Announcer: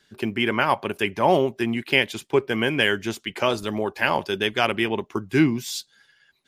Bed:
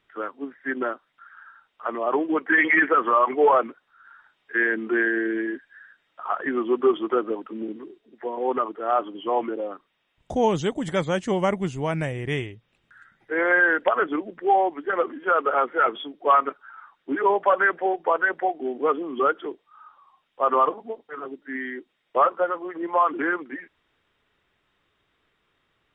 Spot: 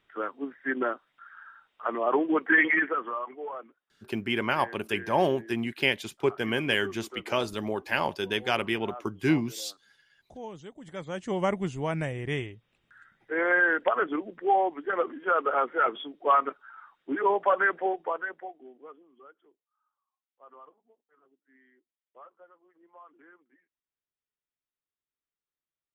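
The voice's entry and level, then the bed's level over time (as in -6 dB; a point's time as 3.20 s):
3.90 s, -5.5 dB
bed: 2.57 s -1.5 dB
3.43 s -20 dB
10.74 s -20 dB
11.43 s -4 dB
17.87 s -4 dB
19.18 s -31.5 dB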